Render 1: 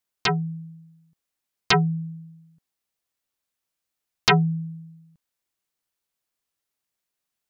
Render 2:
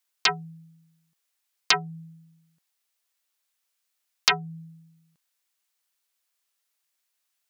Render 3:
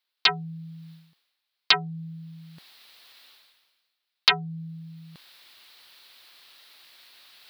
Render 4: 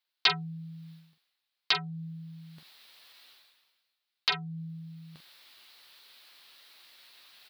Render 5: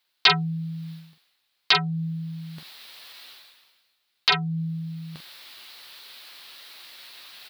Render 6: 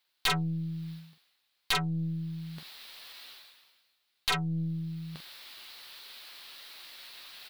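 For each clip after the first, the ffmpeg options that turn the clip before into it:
ffmpeg -i in.wav -af "acompressor=threshold=-22dB:ratio=5,highpass=frequency=1300:poles=1,volume=6dB" out.wav
ffmpeg -i in.wav -af "highshelf=frequency=5300:width_type=q:width=3:gain=-9,areverse,acompressor=mode=upward:threshold=-29dB:ratio=2.5,areverse,volume=-1dB" out.wav
ffmpeg -i in.wav -filter_complex "[0:a]alimiter=limit=-7dB:level=0:latency=1:release=318,asplit=2[link_01][link_02];[link_02]aecho=0:1:13|45:0.355|0.299[link_03];[link_01][link_03]amix=inputs=2:normalize=0,volume=-4dB" out.wav
ffmpeg -i in.wav -af "alimiter=level_in=15.5dB:limit=-1dB:release=50:level=0:latency=1,volume=-4.5dB" out.wav
ffmpeg -i in.wav -af "aeval=exprs='(tanh(12.6*val(0)+0.4)-tanh(0.4))/12.6':channel_layout=same,volume=-1.5dB" out.wav

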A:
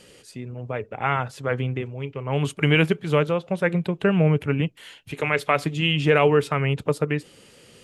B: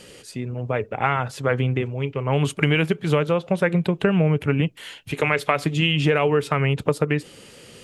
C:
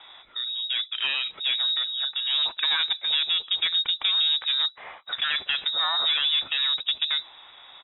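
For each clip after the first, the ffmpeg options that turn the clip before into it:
ffmpeg -i in.wav -af "acompressor=threshold=-21dB:ratio=6,volume=5.5dB" out.wav
ffmpeg -i in.wav -af "aresample=11025,asoftclip=type=tanh:threshold=-17dB,aresample=44100,lowpass=frequency=3300:width_type=q:width=0.5098,lowpass=frequency=3300:width_type=q:width=0.6013,lowpass=frequency=3300:width_type=q:width=0.9,lowpass=frequency=3300:width_type=q:width=2.563,afreqshift=-3900,volume=-1.5dB" out.wav

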